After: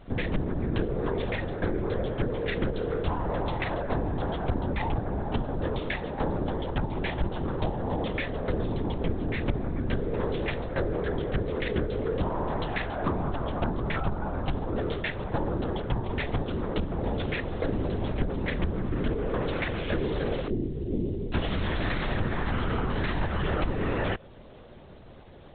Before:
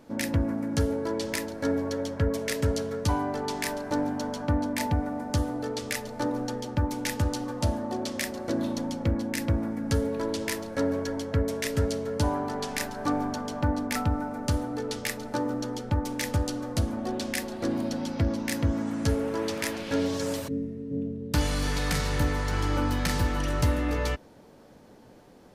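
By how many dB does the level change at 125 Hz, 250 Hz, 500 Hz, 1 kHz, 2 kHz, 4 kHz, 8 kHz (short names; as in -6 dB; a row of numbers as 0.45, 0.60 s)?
-0.5 dB, -2.5 dB, +0.5 dB, -0.5 dB, +0.5 dB, -4.0 dB, under -40 dB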